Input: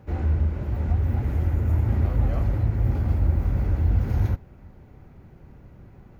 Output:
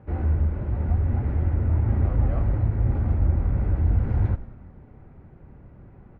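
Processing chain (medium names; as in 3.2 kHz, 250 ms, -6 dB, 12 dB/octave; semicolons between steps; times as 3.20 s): low-pass 2 kHz 12 dB/octave; on a send: frequency-shifting echo 90 ms, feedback 64%, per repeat -46 Hz, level -16.5 dB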